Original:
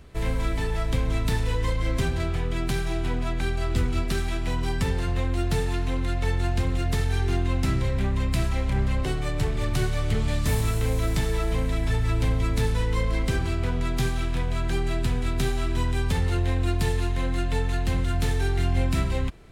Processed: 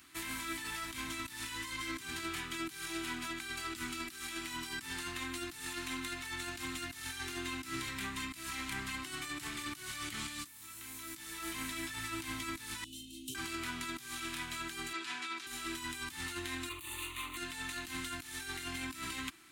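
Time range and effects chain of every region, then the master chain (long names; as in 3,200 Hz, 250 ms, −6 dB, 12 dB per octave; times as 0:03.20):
0:12.84–0:13.35: Chebyshev band-stop filter 420–2,800 Hz, order 5 + parametric band 4,900 Hz −8.5 dB 0.37 octaves + tuned comb filter 130 Hz, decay 0.21 s, mix 80%
0:14.93–0:15.47: band-pass filter 420–5,200 Hz + comb filter 6.9 ms, depth 69%
0:16.69–0:17.37: lower of the sound and its delayed copy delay 1.1 ms + phaser with its sweep stopped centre 1,100 Hz, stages 8
whole clip: first difference; compressor whose output falls as the input rises −48 dBFS, ratio −1; drawn EQ curve 200 Hz 0 dB, 320 Hz +11 dB, 470 Hz −22 dB, 740 Hz −7 dB, 1,200 Hz +1 dB, 5,000 Hz −7 dB; level +9.5 dB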